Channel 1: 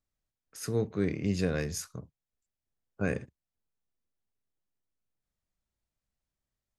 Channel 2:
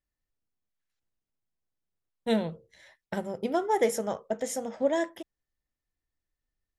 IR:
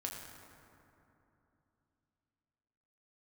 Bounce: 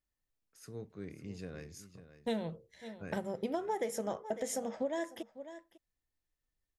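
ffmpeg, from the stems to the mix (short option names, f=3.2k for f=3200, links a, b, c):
-filter_complex "[0:a]volume=-15.5dB,asplit=2[a][b];[b]volume=-12.5dB[c];[1:a]bandreject=f=1.4k:w=26,volume=-2dB,asplit=2[d][e];[e]volume=-19.5dB[f];[c][f]amix=inputs=2:normalize=0,aecho=0:1:549:1[g];[a][d][g]amix=inputs=3:normalize=0,acompressor=threshold=-31dB:ratio=10"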